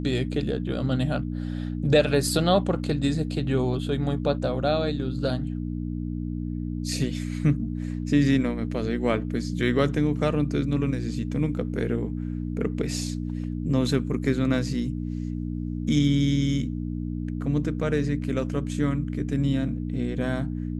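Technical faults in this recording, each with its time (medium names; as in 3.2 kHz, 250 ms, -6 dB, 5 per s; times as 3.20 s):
hum 60 Hz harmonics 5 -30 dBFS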